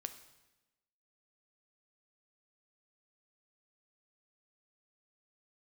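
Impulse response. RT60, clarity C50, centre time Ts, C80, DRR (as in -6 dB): 1.0 s, 11.5 dB, 10 ms, 14.0 dB, 9.0 dB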